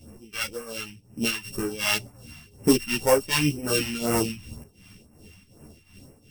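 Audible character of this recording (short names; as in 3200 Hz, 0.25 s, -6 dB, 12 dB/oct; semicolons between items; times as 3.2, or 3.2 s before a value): a buzz of ramps at a fixed pitch in blocks of 16 samples; phasing stages 2, 2 Hz, lowest notch 440–3400 Hz; tremolo triangle 2.7 Hz, depth 80%; a shimmering, thickened sound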